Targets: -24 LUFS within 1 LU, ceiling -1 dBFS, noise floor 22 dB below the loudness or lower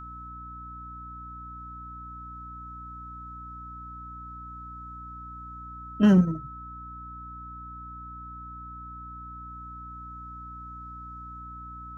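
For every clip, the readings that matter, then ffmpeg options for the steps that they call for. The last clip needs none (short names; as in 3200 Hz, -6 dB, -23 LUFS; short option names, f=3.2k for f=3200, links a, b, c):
hum 60 Hz; harmonics up to 300 Hz; hum level -43 dBFS; steady tone 1300 Hz; tone level -40 dBFS; loudness -33.5 LUFS; peak -9.0 dBFS; loudness target -24.0 LUFS
-> -af "bandreject=f=60:t=h:w=6,bandreject=f=120:t=h:w=6,bandreject=f=180:t=h:w=6,bandreject=f=240:t=h:w=6,bandreject=f=300:t=h:w=6"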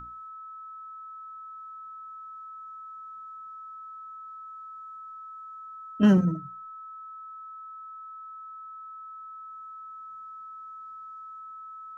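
hum none; steady tone 1300 Hz; tone level -40 dBFS
-> -af "bandreject=f=1.3k:w=30"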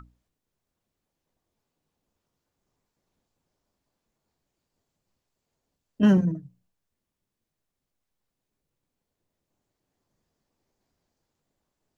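steady tone none; loudness -22.5 LUFS; peak -9.0 dBFS; loudness target -24.0 LUFS
-> -af "volume=-1.5dB"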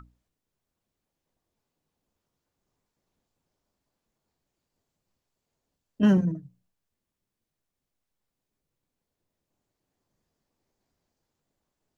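loudness -24.0 LUFS; peak -10.5 dBFS; noise floor -85 dBFS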